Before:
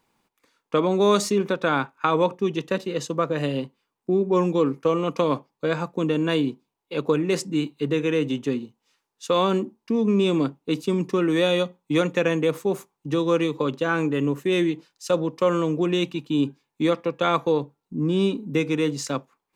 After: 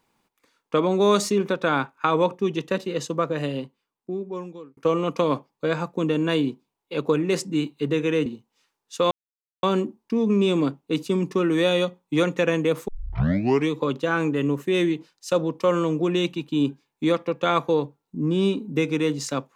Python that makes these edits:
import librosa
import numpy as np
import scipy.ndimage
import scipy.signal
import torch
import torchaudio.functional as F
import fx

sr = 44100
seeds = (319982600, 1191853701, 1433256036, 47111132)

y = fx.edit(x, sr, fx.fade_out_span(start_s=3.14, length_s=1.63),
    fx.cut(start_s=8.26, length_s=0.3),
    fx.insert_silence(at_s=9.41, length_s=0.52),
    fx.tape_start(start_s=12.66, length_s=0.82), tone=tone)